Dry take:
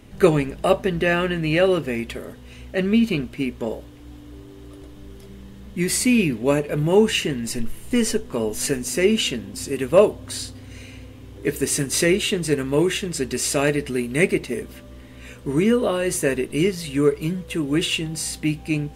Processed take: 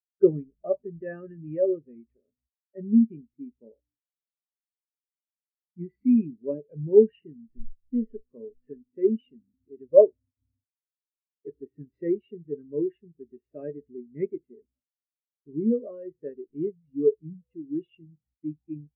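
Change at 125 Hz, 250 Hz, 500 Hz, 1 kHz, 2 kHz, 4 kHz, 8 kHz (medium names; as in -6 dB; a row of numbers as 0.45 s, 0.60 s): -14.5 dB, -6.5 dB, -4.5 dB, under -20 dB, under -30 dB, under -40 dB, under -40 dB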